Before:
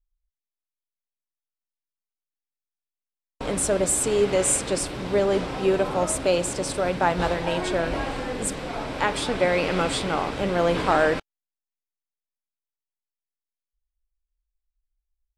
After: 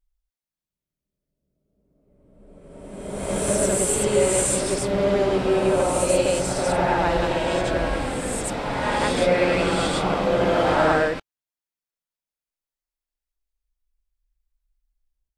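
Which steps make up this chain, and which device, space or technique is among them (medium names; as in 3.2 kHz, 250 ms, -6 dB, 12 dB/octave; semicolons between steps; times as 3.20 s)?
reverse reverb (reverse; reverberation RT60 1.8 s, pre-delay 71 ms, DRR -3.5 dB; reverse); trim -3 dB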